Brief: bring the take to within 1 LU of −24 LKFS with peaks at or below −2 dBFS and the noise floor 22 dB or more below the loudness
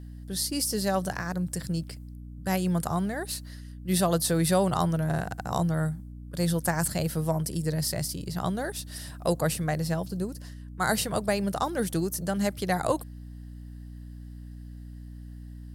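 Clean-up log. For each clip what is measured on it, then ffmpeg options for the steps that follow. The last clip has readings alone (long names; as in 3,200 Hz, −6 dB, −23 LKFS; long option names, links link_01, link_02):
mains hum 60 Hz; hum harmonics up to 300 Hz; level of the hum −40 dBFS; integrated loudness −28.5 LKFS; sample peak −12.0 dBFS; target loudness −24.0 LKFS
→ -af "bandreject=frequency=60:width_type=h:width=4,bandreject=frequency=120:width_type=h:width=4,bandreject=frequency=180:width_type=h:width=4,bandreject=frequency=240:width_type=h:width=4,bandreject=frequency=300:width_type=h:width=4"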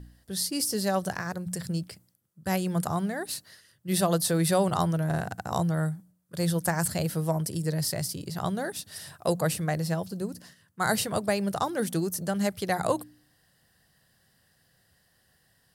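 mains hum none found; integrated loudness −29.0 LKFS; sample peak −12.0 dBFS; target loudness −24.0 LKFS
→ -af "volume=5dB"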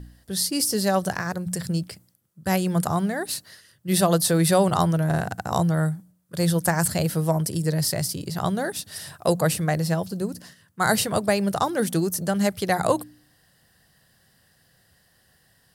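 integrated loudness −24.0 LKFS; sample peak −7.0 dBFS; background noise floor −62 dBFS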